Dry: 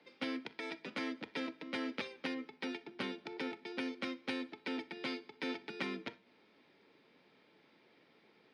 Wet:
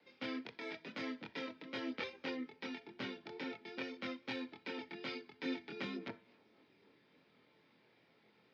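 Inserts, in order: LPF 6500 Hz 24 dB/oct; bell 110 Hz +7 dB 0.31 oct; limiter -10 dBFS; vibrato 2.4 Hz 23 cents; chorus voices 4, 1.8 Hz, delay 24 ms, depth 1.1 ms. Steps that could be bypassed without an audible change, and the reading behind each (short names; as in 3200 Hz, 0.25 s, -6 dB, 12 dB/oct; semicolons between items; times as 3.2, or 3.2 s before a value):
limiter -10 dBFS: input peak -22.0 dBFS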